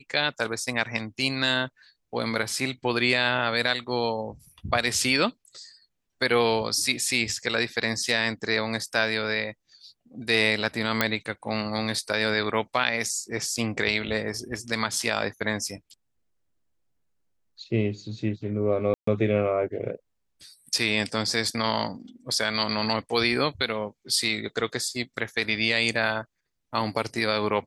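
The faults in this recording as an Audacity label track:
11.010000	11.010000	pop -5 dBFS
18.940000	19.070000	dropout 134 ms

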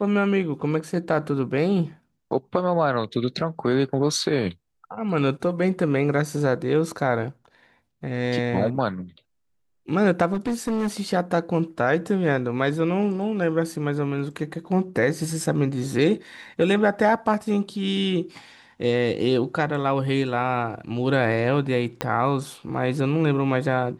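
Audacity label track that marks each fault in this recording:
10.330000	11.010000	clipped -20.5 dBFS
22.010000	22.010000	pop -9 dBFS

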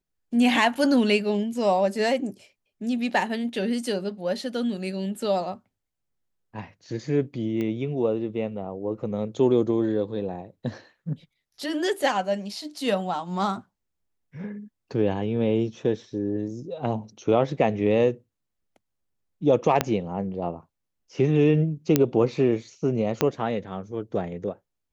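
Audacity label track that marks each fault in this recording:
7.610000	7.610000	pop -19 dBFS
19.810000	19.810000	pop -5 dBFS
21.960000	21.960000	pop -4 dBFS
23.210000	23.210000	pop -6 dBFS

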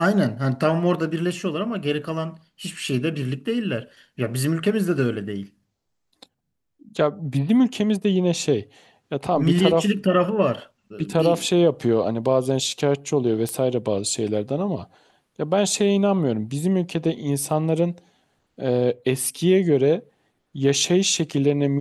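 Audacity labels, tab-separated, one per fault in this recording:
13.490000	13.490000	pop -14 dBFS

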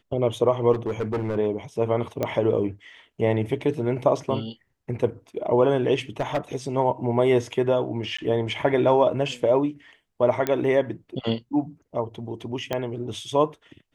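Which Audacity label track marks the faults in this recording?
0.720000	1.370000	clipped -22 dBFS
2.230000	2.230000	pop -12 dBFS
6.200000	6.380000	clipped -19.5 dBFS
8.170000	8.190000	dropout 15 ms
10.470000	10.470000	pop -10 dBFS
12.730000	12.730000	pop -12 dBFS

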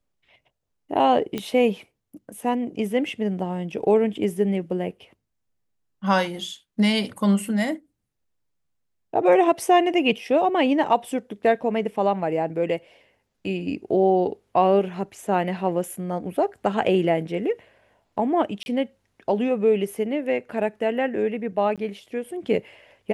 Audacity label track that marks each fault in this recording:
1.380000	1.380000	pop -14 dBFS
18.630000	18.660000	dropout 31 ms
21.760000	21.780000	dropout 17 ms

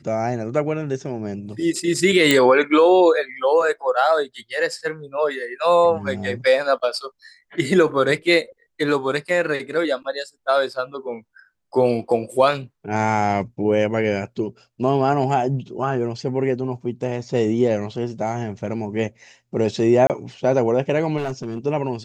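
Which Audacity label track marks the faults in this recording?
2.310000	2.310000	pop -2 dBFS
20.070000	20.100000	dropout 28 ms
21.170000	21.580000	clipped -21.5 dBFS

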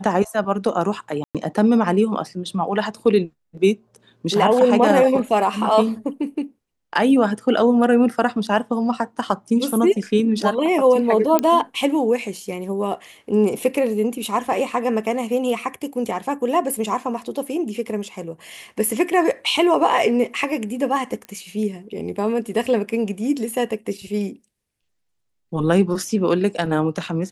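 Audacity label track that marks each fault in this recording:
1.240000	1.350000	dropout 107 ms
11.390000	11.390000	pop -4 dBFS
21.250000	21.250000	pop -20 dBFS

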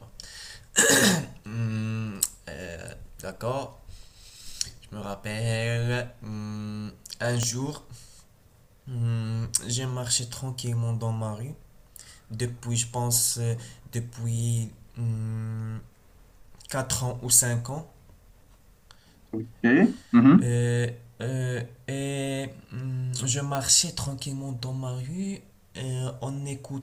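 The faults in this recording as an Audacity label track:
7.430000	7.430000	pop -14 dBFS
23.550000	23.550000	pop -14 dBFS

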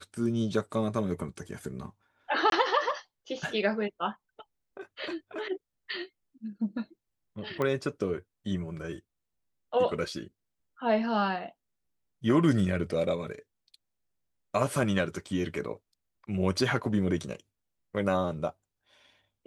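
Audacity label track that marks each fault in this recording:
2.500000	2.520000	dropout 22 ms
7.620000	7.620000	pop -18 dBFS

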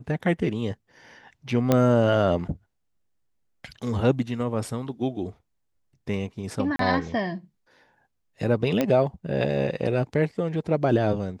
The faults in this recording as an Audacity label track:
1.720000	1.720000	pop -7 dBFS
6.760000	6.790000	dropout 33 ms
8.810000	8.810000	pop -10 dBFS

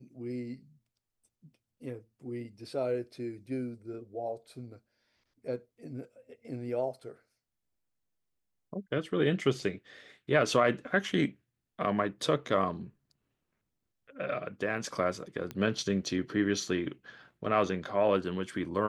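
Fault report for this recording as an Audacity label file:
15.510000	15.510000	pop -23 dBFS

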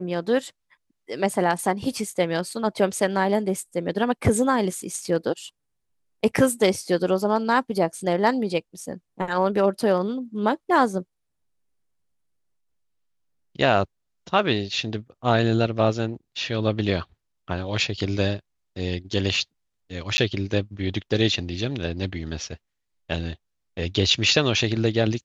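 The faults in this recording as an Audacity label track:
20.170000	20.180000	dropout 10 ms

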